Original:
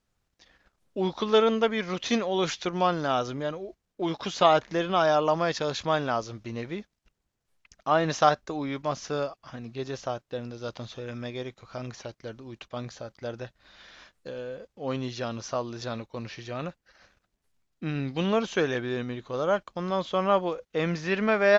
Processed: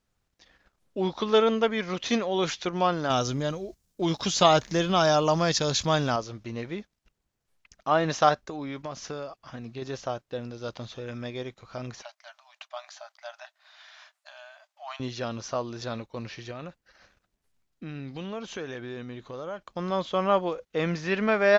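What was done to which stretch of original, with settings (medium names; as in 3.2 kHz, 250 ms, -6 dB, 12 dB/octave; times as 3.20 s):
3.10–6.16 s: tone controls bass +8 dB, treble +14 dB
8.40–9.82 s: compression, threshold -31 dBFS
12.02–15.00 s: brick-wall FIR high-pass 590 Hz
16.51–19.72 s: compression 2.5:1, threshold -37 dBFS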